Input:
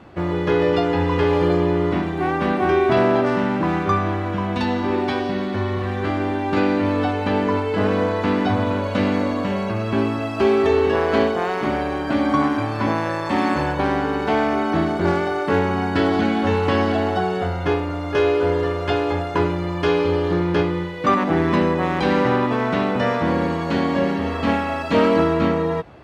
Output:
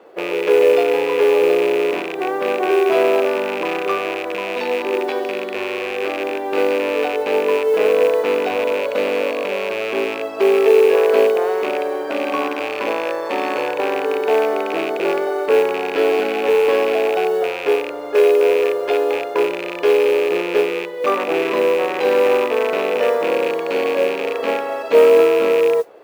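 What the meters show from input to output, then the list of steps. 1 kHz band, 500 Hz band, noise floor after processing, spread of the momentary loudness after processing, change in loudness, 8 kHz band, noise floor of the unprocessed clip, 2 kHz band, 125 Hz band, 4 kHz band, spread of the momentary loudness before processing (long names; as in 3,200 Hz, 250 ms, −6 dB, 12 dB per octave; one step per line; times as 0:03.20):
−1.0 dB, +6.0 dB, −26 dBFS, 9 LU, +2.5 dB, can't be measured, −26 dBFS, +2.0 dB, below −20 dB, +2.5 dB, 5 LU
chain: loose part that buzzes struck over −25 dBFS, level −11 dBFS
high-pass with resonance 460 Hz, resonance Q 4.9
noise that follows the level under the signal 30 dB
level −4 dB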